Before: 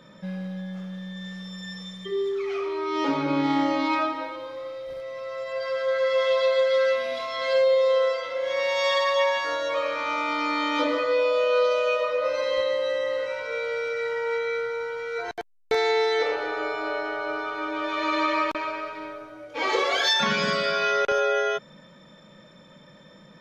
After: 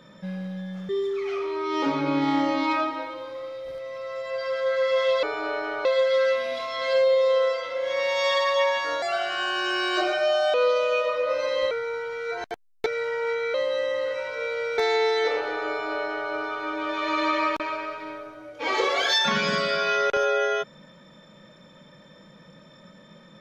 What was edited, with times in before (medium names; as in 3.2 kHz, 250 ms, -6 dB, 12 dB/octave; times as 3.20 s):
0.89–2.11 s: delete
9.62–11.49 s: speed 123%
12.66–13.90 s: swap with 14.58–15.73 s
16.64–17.26 s: copy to 6.45 s